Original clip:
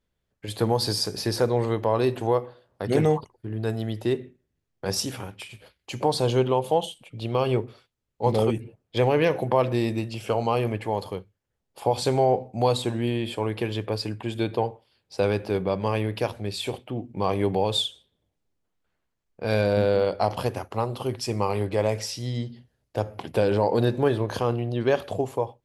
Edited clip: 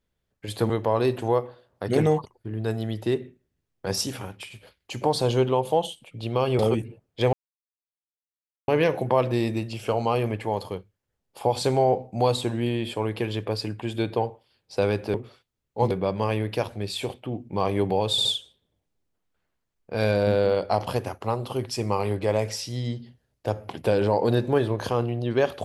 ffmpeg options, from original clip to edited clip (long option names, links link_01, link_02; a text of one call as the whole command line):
ffmpeg -i in.wav -filter_complex "[0:a]asplit=8[link_01][link_02][link_03][link_04][link_05][link_06][link_07][link_08];[link_01]atrim=end=0.702[link_09];[link_02]atrim=start=1.688:end=7.582[link_10];[link_03]atrim=start=8.348:end=9.09,asetpts=PTS-STARTPTS,afade=type=out:start_time=0.738:duration=0.004:curve=hsin,apad=pad_dur=1.35[link_11];[link_04]atrim=start=9.09:end=15.552,asetpts=PTS-STARTPTS,afade=type=in:duration=0.004:curve=hsin[link_12];[link_05]atrim=start=7.578:end=8.352[link_13];[link_06]atrim=start=15.548:end=17.822[link_14];[link_07]atrim=start=17.748:end=17.822[link_15];[link_08]atrim=start=17.748[link_16];[link_09][link_10]acrossfade=duration=0.004:curve1=hsin:curve2=hsin[link_17];[link_11][link_12]concat=n=2:v=0:a=1[link_18];[link_17][link_18]acrossfade=duration=0.004:curve1=hsin:curve2=hsin[link_19];[link_19][link_13]acrossfade=duration=0.004:curve1=hsin:curve2=hsin[link_20];[link_20][link_14]acrossfade=duration=0.004:curve1=hsin:curve2=hsin[link_21];[link_21][link_15]acrossfade=duration=0.004:curve1=hsin:curve2=hsin[link_22];[link_22][link_16]acrossfade=duration=0.004:curve1=hsin:curve2=hsin" out.wav